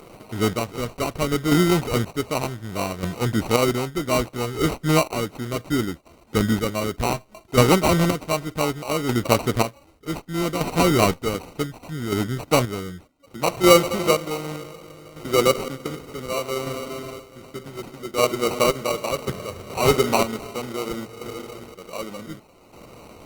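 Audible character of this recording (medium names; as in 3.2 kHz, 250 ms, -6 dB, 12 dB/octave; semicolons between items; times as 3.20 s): chopped level 0.66 Hz, depth 60%, duty 35%; aliases and images of a low sample rate 1.7 kHz, jitter 0%; Opus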